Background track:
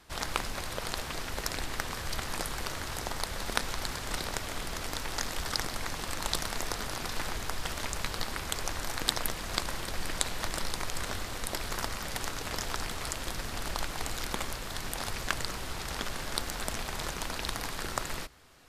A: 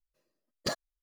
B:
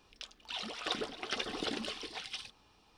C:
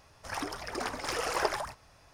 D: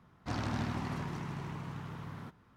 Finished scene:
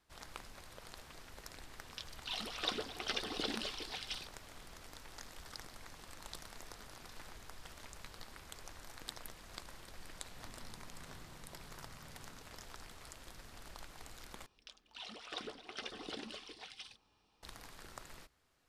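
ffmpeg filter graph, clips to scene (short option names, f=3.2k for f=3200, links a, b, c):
-filter_complex "[2:a]asplit=2[a][b];[0:a]volume=-17.5dB[c];[a]equalizer=f=4.4k:w=1.5:g=3.5[d];[4:a]acompressor=threshold=-47dB:ratio=6:attack=3.2:release=140:knee=1:detection=peak[e];[c]asplit=2[f][g];[f]atrim=end=14.464[h];[b]atrim=end=2.97,asetpts=PTS-STARTPTS,volume=-8.5dB[i];[g]atrim=start=17.426[j];[d]atrim=end=2.97,asetpts=PTS-STARTPTS,volume=-3dB,afade=t=in:d=0.004:c=hsin,afade=t=out:st=2.966:d=0.004:c=hsin,adelay=1770[k];[e]atrim=end=2.56,asetpts=PTS-STARTPTS,volume=-9dB,afade=t=in:d=0.004:c=hsin,afade=t=out:st=2.556:d=0.004:c=hsin,adelay=10110[l];[h][i]acrossfade=d=0.004:c1=hsin:c2=hsin[m];[m][j]acrossfade=d=0.004:c1=hsin:c2=hsin[n];[n][k][l]amix=inputs=3:normalize=0"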